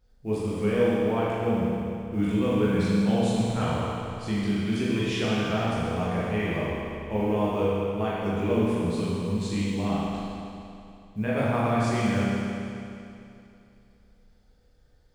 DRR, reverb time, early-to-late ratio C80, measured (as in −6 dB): −8.5 dB, 2.7 s, −2.0 dB